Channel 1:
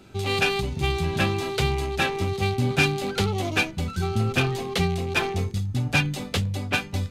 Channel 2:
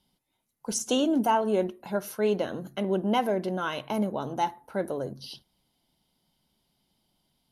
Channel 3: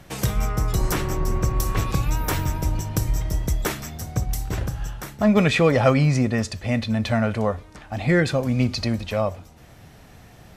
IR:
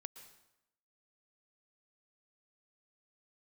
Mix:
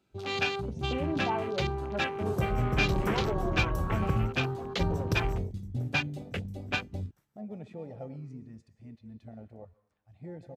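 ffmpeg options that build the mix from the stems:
-filter_complex "[0:a]bandreject=f=50:t=h:w=6,bandreject=f=100:t=h:w=6,bandreject=f=150:t=h:w=6,bandreject=f=200:t=h:w=6,bandreject=f=250:t=h:w=6,bandreject=f=300:t=h:w=6,bandreject=f=350:t=h:w=6,bandreject=f=400:t=h:w=6,bandreject=f=450:t=h:w=6,bandreject=f=500:t=h:w=6,volume=0.473,asplit=2[s0][s1];[s1]volume=0.0668[s2];[1:a]acrossover=split=4700[s3][s4];[s4]acompressor=threshold=0.00141:ratio=4:attack=1:release=60[s5];[s3][s5]amix=inputs=2:normalize=0,flanger=delay=0.3:depth=7.2:regen=-36:speed=0.35:shape=triangular,volume=0.562,asplit=3[s6][s7][s8];[s6]atrim=end=4.09,asetpts=PTS-STARTPTS,afade=t=out:st=4.086:d=0.004:c=hsin[s9];[s7]atrim=start=4.09:end=4.79,asetpts=PTS-STARTPTS,volume=0[s10];[s8]atrim=start=4.79,asetpts=PTS-STARTPTS,afade=t=in:d=0.004:c=hsin[s11];[s9][s10][s11]concat=n=3:v=0:a=1,asplit=2[s12][s13];[2:a]highshelf=f=9700:g=2.5,adelay=2150,volume=0.473,asplit=2[s14][s15];[s15]volume=0.211[s16];[s13]apad=whole_len=560567[s17];[s14][s17]sidechaingate=range=0.0316:threshold=0.001:ratio=16:detection=peak[s18];[3:a]atrim=start_sample=2205[s19];[s2][s16]amix=inputs=2:normalize=0[s20];[s20][s19]afir=irnorm=-1:irlink=0[s21];[s0][s12][s18][s21]amix=inputs=4:normalize=0,highpass=f=58:p=1,afwtdn=0.0126"

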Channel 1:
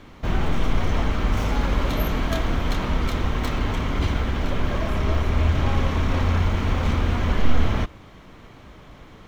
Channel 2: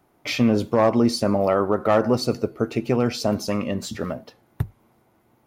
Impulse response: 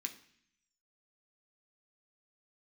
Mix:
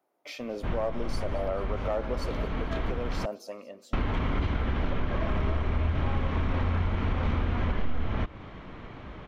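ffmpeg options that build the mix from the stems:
-filter_complex "[0:a]lowpass=3000,adelay=400,volume=1.33,asplit=3[s0][s1][s2];[s0]atrim=end=3.26,asetpts=PTS-STARTPTS,afade=t=out:st=3.256:d=0.004:c=hsin[s3];[s1]atrim=start=3.26:end=3.93,asetpts=PTS-STARTPTS,volume=0[s4];[s2]atrim=start=3.93,asetpts=PTS-STARTPTS,afade=t=in:d=0.004:c=hsin[s5];[s3][s4][s5]concat=n=3:v=0:a=1[s6];[1:a]highpass=320,equalizer=f=580:w=1.8:g=7,volume=0.178,afade=t=out:st=3.21:d=0.61:silence=0.473151,asplit=3[s7][s8][s9];[s8]volume=0.106[s10];[s9]apad=whole_len=426763[s11];[s6][s11]sidechaincompress=threshold=0.0112:ratio=8:attack=7.6:release=700[s12];[s10]aecho=0:1:221|442|663|884|1105|1326|1547:1|0.51|0.26|0.133|0.0677|0.0345|0.0176[s13];[s12][s7][s13]amix=inputs=3:normalize=0,acompressor=threshold=0.0631:ratio=5"

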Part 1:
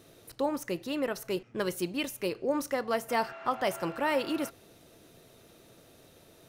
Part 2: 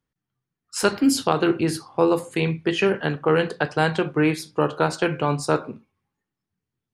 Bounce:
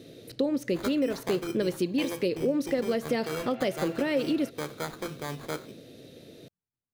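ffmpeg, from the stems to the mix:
-filter_complex "[0:a]equalizer=f=125:t=o:w=1:g=10,equalizer=f=250:t=o:w=1:g=12,equalizer=f=500:t=o:w=1:g=12,equalizer=f=1000:t=o:w=1:g=-9,equalizer=f=2000:t=o:w=1:g=6,equalizer=f=4000:t=o:w=1:g=10,volume=0.708[s0];[1:a]acrusher=samples=16:mix=1:aa=0.000001,volume=0.211[s1];[s0][s1]amix=inputs=2:normalize=0,acompressor=threshold=0.0562:ratio=3"

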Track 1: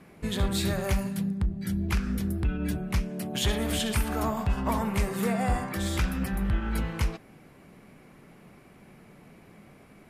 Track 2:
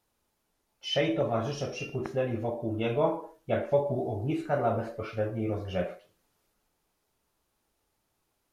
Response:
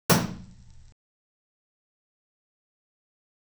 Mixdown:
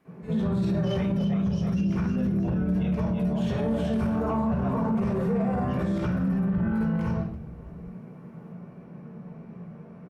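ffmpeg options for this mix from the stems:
-filter_complex "[0:a]lowpass=f=1900:p=1,volume=0.299,asplit=3[s0][s1][s2];[s1]volume=0.398[s3];[s2]volume=0.106[s4];[1:a]volume=0.531,asplit=2[s5][s6];[s6]volume=0.531[s7];[2:a]atrim=start_sample=2205[s8];[s3][s8]afir=irnorm=-1:irlink=0[s9];[s4][s7]amix=inputs=2:normalize=0,aecho=0:1:329|658|987|1316|1645:1|0.36|0.13|0.0467|0.0168[s10];[s0][s5][s9][s10]amix=inputs=4:normalize=0,lowshelf=f=260:g=-8,asoftclip=type=tanh:threshold=0.282,alimiter=limit=0.106:level=0:latency=1:release=45"

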